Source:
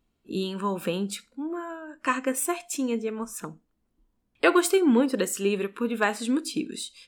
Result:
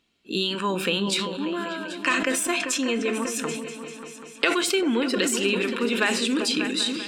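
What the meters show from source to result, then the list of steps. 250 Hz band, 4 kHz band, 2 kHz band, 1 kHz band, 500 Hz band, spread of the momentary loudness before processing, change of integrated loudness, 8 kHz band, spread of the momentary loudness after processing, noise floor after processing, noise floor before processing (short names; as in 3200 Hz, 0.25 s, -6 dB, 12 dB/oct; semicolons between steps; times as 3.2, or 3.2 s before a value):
+0.5 dB, +11.5 dB, +6.0 dB, 0.0 dB, 0.0 dB, 14 LU, +2.5 dB, +4.5 dB, 9 LU, -45 dBFS, -75 dBFS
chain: weighting filter D; compressor, threshold -24 dBFS, peak gain reduction 12.5 dB; high shelf 9300 Hz -7 dB; repeats that get brighter 0.196 s, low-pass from 200 Hz, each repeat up 2 oct, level -6 dB; sustainer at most 43 dB/s; gain +3.5 dB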